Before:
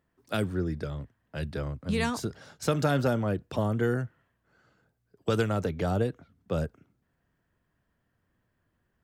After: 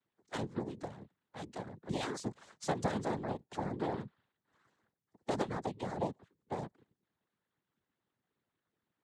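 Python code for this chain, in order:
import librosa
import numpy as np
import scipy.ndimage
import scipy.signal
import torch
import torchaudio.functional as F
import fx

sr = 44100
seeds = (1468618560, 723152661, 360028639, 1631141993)

y = fx.noise_vocoder(x, sr, seeds[0], bands=6)
y = fx.hpss(y, sr, part='harmonic', gain_db=-12)
y = fx.dynamic_eq(y, sr, hz=2000.0, q=0.93, threshold_db=-48.0, ratio=4.0, max_db=-4)
y = y * 10.0 ** (-5.0 / 20.0)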